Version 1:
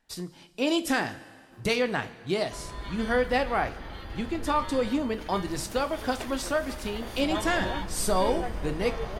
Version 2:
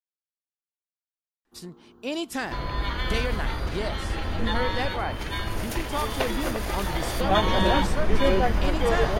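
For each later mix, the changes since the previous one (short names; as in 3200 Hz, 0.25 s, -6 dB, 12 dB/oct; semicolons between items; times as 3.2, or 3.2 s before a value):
speech: entry +1.45 s; second sound +11.0 dB; reverb: off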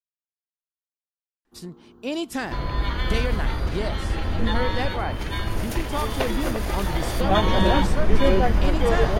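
master: add low shelf 420 Hz +4.5 dB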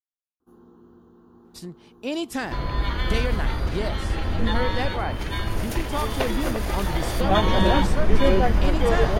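first sound: entry -1.05 s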